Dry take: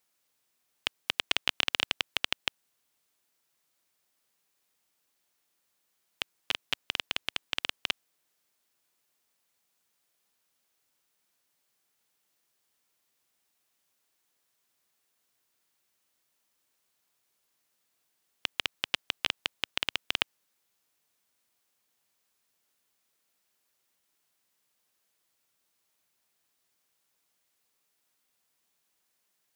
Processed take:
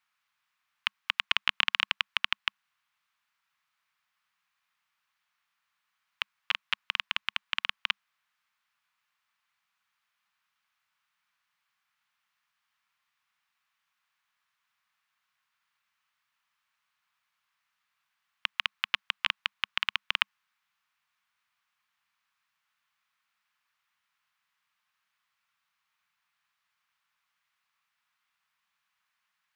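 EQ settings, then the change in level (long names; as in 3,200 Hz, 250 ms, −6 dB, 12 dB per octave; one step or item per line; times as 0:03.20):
drawn EQ curve 200 Hz 0 dB, 350 Hz −23 dB, 1,100 Hz +14 dB, 2,500 Hz +11 dB, 8,700 Hz −6 dB
−7.5 dB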